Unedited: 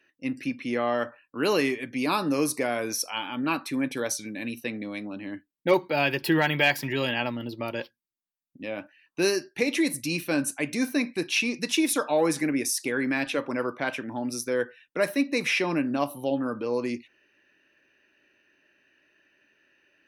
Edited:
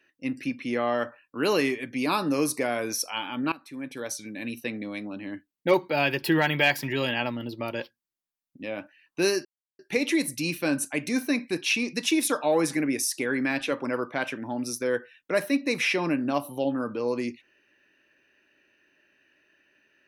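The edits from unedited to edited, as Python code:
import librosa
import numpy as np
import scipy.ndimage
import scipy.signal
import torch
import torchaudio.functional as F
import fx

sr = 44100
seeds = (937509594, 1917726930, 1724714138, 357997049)

y = fx.edit(x, sr, fx.fade_in_from(start_s=3.52, length_s=1.04, floor_db=-19.0),
    fx.insert_silence(at_s=9.45, length_s=0.34), tone=tone)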